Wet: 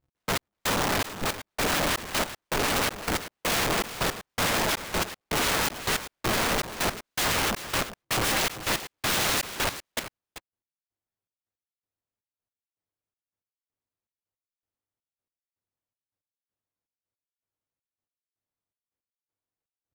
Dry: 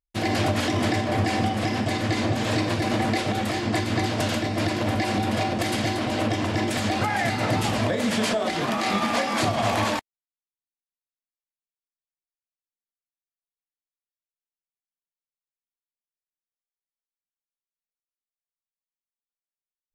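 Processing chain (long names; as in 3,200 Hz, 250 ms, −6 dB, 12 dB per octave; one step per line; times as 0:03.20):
tilt shelving filter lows +9 dB, about 1,500 Hz
compressor whose output falls as the input rises −19 dBFS, ratio −0.5
wrap-around overflow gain 20.5 dB
gate pattern "x..x...xxx" 161 BPM −60 dB
on a send: single-tap delay 389 ms −12.5 dB
on the sum: ring modulator with a square carrier 100 Hz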